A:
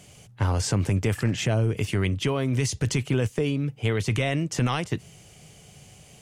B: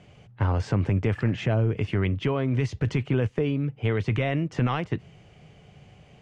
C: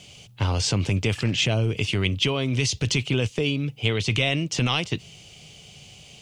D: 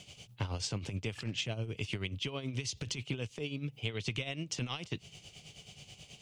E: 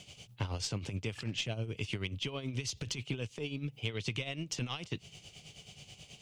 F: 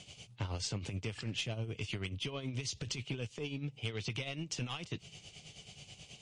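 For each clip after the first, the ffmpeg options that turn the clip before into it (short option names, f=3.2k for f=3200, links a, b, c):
-af "lowpass=2.4k"
-af "aexciter=amount=7.8:drive=5.9:freq=2.6k"
-af "acompressor=threshold=-28dB:ratio=6,tremolo=f=9.3:d=0.66,volume=-3.5dB"
-af "aeval=exprs='0.112*(cos(1*acos(clip(val(0)/0.112,-1,1)))-cos(1*PI/2))+0.00501*(cos(4*acos(clip(val(0)/0.112,-1,1)))-cos(4*PI/2))':c=same"
-af "asoftclip=type=tanh:threshold=-28dB" -ar 24000 -c:a libmp3lame -b:a 40k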